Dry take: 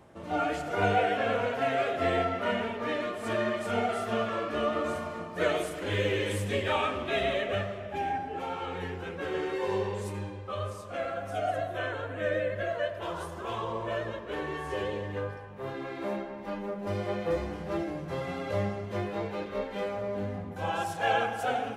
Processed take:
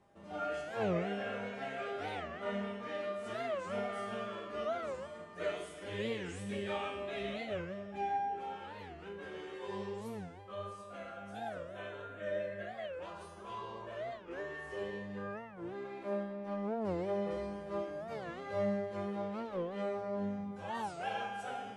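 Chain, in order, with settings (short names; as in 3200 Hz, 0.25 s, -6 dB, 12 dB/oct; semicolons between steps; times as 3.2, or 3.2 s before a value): steep low-pass 11000 Hz 96 dB/oct; resonator 200 Hz, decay 0.82 s, harmonics all, mix 90%; record warp 45 rpm, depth 250 cents; gain +4 dB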